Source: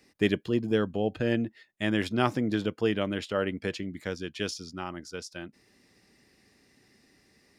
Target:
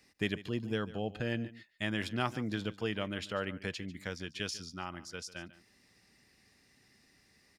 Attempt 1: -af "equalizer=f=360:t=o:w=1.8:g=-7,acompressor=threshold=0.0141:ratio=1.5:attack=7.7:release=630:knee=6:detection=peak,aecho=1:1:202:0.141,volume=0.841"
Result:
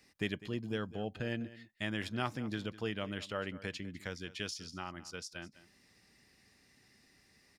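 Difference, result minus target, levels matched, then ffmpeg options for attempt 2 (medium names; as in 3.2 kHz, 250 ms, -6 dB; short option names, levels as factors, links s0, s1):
echo 57 ms late; compression: peak gain reduction +2.5 dB
-af "equalizer=f=360:t=o:w=1.8:g=-7,acompressor=threshold=0.0355:ratio=1.5:attack=7.7:release=630:knee=6:detection=peak,aecho=1:1:145:0.141,volume=0.841"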